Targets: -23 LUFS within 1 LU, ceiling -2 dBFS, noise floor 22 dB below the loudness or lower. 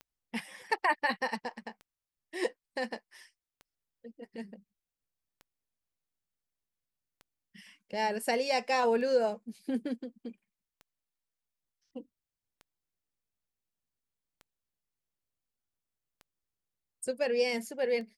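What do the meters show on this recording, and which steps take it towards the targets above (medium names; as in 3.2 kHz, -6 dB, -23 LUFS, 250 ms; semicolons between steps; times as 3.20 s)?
clicks found 11; loudness -32.0 LUFS; peak level -15.5 dBFS; loudness target -23.0 LUFS
-> de-click; trim +9 dB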